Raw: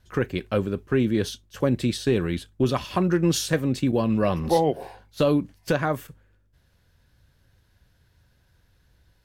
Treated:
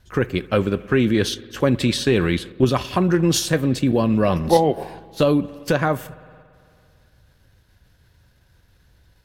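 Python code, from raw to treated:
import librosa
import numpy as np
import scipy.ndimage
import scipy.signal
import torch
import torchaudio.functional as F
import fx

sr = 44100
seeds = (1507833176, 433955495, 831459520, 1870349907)

p1 = fx.rev_spring(x, sr, rt60_s=2.3, pass_ms=(56,), chirp_ms=35, drr_db=18.5)
p2 = fx.level_steps(p1, sr, step_db=9)
p3 = p1 + F.gain(torch.from_numpy(p2), 1.0).numpy()
y = fx.peak_eq(p3, sr, hz=2300.0, db=5.0, octaves=2.6, at=(0.53, 2.52))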